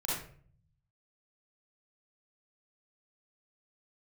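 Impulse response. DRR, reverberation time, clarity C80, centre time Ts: -7.5 dB, 0.50 s, 5.0 dB, 62 ms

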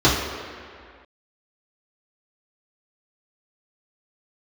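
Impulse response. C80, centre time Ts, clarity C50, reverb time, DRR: 4.0 dB, 80 ms, 2.0 dB, 2.1 s, -9.0 dB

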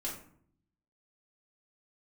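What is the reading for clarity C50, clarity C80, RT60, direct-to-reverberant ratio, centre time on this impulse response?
6.0 dB, 9.5 dB, 0.60 s, -5.0 dB, 32 ms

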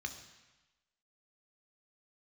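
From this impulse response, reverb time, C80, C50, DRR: 1.1 s, 11.0 dB, 9.5 dB, 5.0 dB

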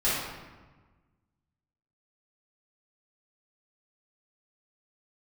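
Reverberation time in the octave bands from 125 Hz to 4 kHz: 1.9, 1.7, 1.3, 1.3, 1.1, 0.85 s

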